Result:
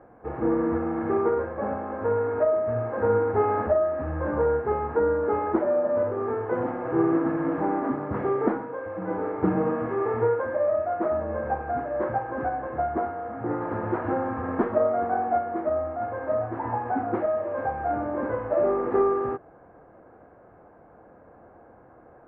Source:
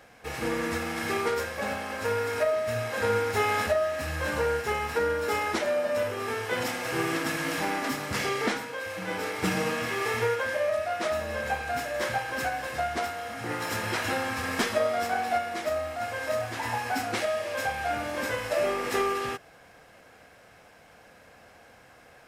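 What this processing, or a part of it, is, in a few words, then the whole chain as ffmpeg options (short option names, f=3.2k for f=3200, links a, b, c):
under water: -af "lowpass=f=1.2k:w=0.5412,lowpass=f=1.2k:w=1.3066,equalizer=f=340:t=o:w=0.51:g=7.5,volume=3dB"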